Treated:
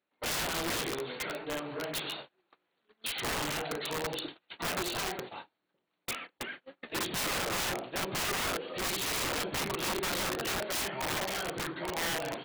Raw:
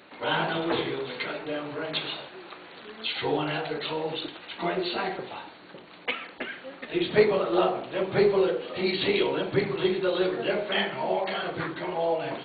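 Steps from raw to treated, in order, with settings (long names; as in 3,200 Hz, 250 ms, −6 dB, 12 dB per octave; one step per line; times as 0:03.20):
noise gate −38 dBFS, range −30 dB
wrap-around overflow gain 23.5 dB
level −4 dB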